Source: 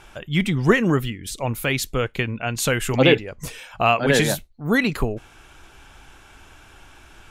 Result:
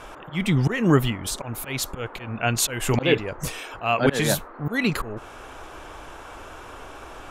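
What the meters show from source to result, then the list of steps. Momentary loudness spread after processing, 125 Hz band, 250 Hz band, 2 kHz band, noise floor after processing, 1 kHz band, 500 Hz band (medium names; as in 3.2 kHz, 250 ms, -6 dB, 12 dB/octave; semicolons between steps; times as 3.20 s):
20 LU, -1.0 dB, -2.5 dB, -4.5 dB, -42 dBFS, -3.0 dB, -4.0 dB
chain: slow attack 262 ms; band noise 270–1400 Hz -46 dBFS; trim +3 dB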